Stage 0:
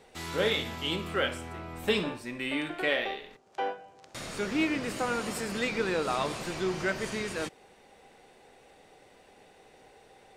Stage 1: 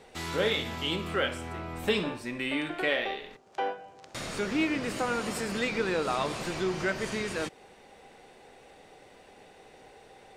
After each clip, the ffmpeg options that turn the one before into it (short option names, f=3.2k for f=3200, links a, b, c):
-filter_complex "[0:a]highshelf=f=10k:g=-4.5,asplit=2[a][b];[b]acompressor=threshold=-36dB:ratio=6,volume=-2.5dB[c];[a][c]amix=inputs=2:normalize=0,volume=-1.5dB"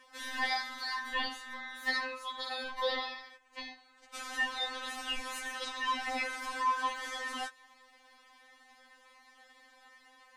-af "aeval=exprs='val(0)*sin(2*PI*1400*n/s)':c=same,afftfilt=real='re*3.46*eq(mod(b,12),0)':imag='im*3.46*eq(mod(b,12),0)':win_size=2048:overlap=0.75"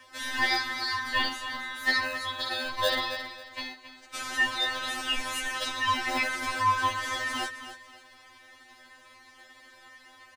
-filter_complex "[0:a]acrossover=split=110|640|3700[a][b][c][d];[b]acrusher=samples=39:mix=1:aa=0.000001[e];[a][e][c][d]amix=inputs=4:normalize=0,aecho=1:1:271|542|813:0.266|0.0745|0.0209,volume=7dB"